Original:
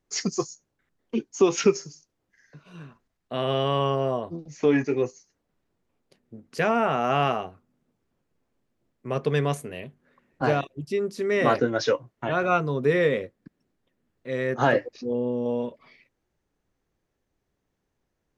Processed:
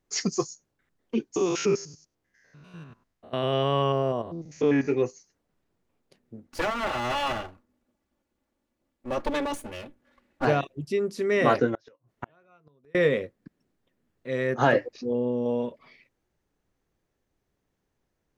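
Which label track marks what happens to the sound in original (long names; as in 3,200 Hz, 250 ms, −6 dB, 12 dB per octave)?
1.360000	4.880000	spectrum averaged block by block every 100 ms
6.470000	10.450000	lower of the sound and its delayed copy delay 3.5 ms
11.740000	12.950000	gate with flip shuts at −19 dBFS, range −37 dB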